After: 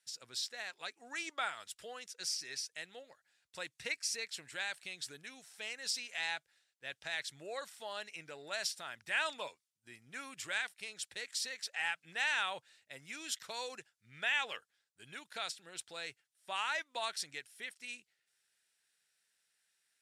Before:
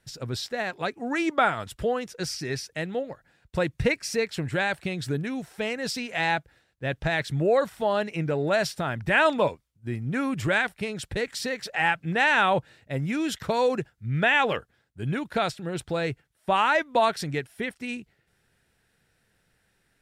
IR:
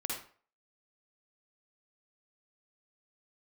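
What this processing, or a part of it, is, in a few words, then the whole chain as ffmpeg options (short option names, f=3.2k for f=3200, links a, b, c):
piezo pickup straight into a mixer: -af "lowpass=8.3k,aderivative"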